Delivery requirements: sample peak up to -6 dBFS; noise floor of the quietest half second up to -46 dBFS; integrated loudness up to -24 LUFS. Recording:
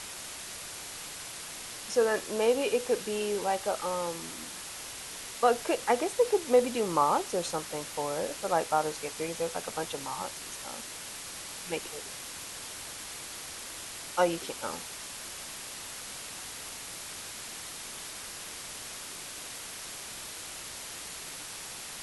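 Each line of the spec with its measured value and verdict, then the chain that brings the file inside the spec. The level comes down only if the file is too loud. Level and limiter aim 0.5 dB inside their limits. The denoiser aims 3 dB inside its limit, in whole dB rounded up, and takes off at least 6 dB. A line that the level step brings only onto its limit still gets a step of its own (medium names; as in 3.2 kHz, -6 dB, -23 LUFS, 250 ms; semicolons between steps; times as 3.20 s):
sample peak -11.0 dBFS: pass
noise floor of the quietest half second -42 dBFS: fail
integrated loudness -33.0 LUFS: pass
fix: noise reduction 7 dB, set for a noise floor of -42 dBFS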